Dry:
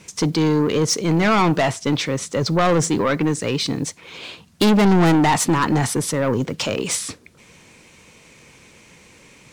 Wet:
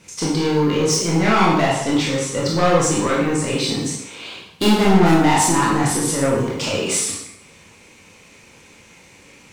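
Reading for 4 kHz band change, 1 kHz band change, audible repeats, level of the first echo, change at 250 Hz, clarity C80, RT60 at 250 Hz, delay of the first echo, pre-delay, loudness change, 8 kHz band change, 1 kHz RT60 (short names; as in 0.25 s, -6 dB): +2.0 dB, +2.0 dB, none, none, +0.5 dB, 5.0 dB, 0.70 s, none, 17 ms, +1.0 dB, +4.0 dB, 0.80 s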